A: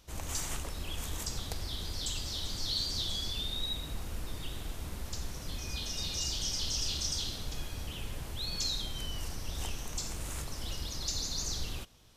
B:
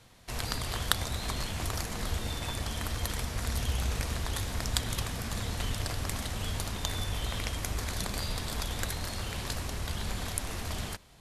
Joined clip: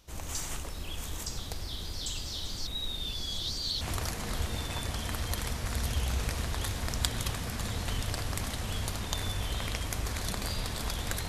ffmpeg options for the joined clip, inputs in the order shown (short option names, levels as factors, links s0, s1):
-filter_complex "[0:a]apad=whole_dur=11.28,atrim=end=11.28,asplit=2[s0][s1];[s0]atrim=end=2.672[s2];[s1]atrim=start=2.668:end=3.812,asetpts=PTS-STARTPTS,areverse[s3];[1:a]atrim=start=1.528:end=9[s4];[s2][s3]acrossfade=d=0.004:c1=hsin:c2=hsin[s5];[s5][s4]acrossfade=d=0.004:c1=hsin:c2=hsin"